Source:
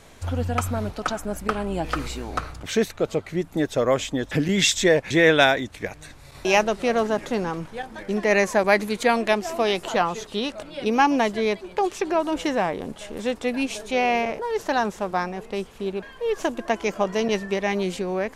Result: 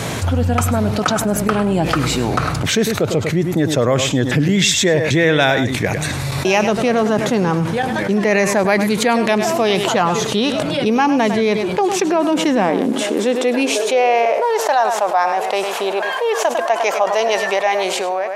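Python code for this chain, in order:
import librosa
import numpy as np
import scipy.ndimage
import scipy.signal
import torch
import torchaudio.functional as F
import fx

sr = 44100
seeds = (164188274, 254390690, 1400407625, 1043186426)

p1 = fx.fade_out_tail(x, sr, length_s=0.8)
p2 = p1 + fx.echo_single(p1, sr, ms=102, db=-14.0, dry=0)
p3 = fx.filter_sweep_highpass(p2, sr, from_hz=120.0, to_hz=700.0, start_s=11.54, end_s=14.73, q=2.5)
y = fx.env_flatten(p3, sr, amount_pct=70)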